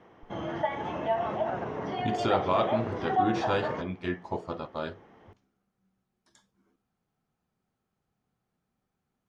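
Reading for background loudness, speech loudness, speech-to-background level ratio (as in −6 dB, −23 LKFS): −31.5 LKFS, −32.0 LKFS, −0.5 dB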